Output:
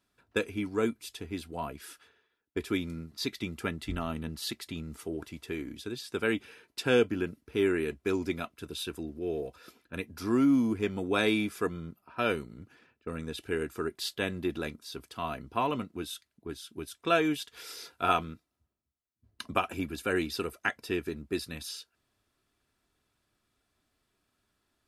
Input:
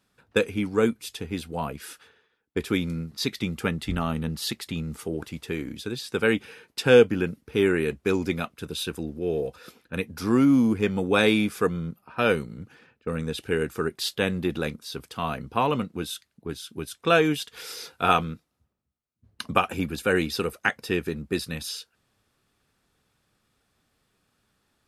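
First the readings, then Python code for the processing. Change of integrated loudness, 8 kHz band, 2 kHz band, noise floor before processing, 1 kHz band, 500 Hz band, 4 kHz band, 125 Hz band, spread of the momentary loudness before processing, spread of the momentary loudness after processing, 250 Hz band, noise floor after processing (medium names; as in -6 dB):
-6.5 dB, -6.0 dB, -6.5 dB, -73 dBFS, -5.5 dB, -7.0 dB, -6.0 dB, -9.0 dB, 15 LU, 15 LU, -5.5 dB, -80 dBFS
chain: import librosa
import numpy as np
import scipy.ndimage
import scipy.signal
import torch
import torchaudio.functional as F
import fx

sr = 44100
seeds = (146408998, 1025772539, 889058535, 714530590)

y = x + 0.38 * np.pad(x, (int(3.0 * sr / 1000.0), 0))[:len(x)]
y = F.gain(torch.from_numpy(y), -6.5).numpy()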